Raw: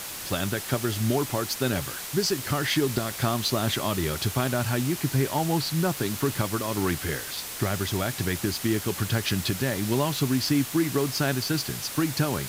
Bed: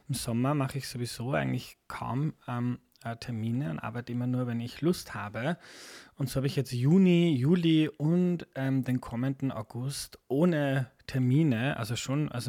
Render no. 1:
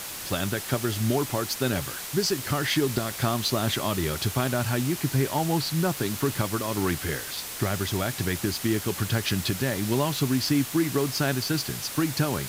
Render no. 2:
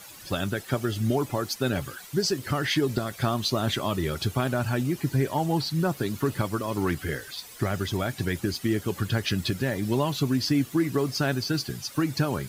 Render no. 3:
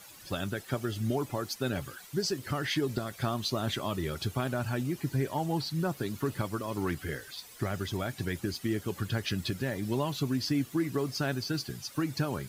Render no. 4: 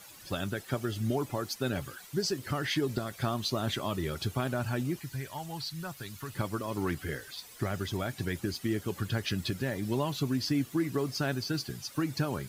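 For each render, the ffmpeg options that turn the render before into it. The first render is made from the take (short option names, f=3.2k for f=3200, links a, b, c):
-af anull
-af "afftdn=nr=13:nf=-36"
-af "volume=-5.5dB"
-filter_complex "[0:a]asettb=1/sr,asplit=3[a][b][c];[a]atrim=end=4.994[d];[b]atrim=start=4.99:end=6.35,asetpts=PTS-STARTPTS,afade=t=in:d=0.004:c=qsin,afade=t=out:st=1.356:d=0.004:c=qsin,equalizer=f=330:w=0.5:g=-14[e];[c]atrim=start=6.346[f];[d][e]acrossfade=d=0.004:c1=hsin:c2=qsin[g];[g][f]acrossfade=d=0.004:c1=qsin:c2=hsin"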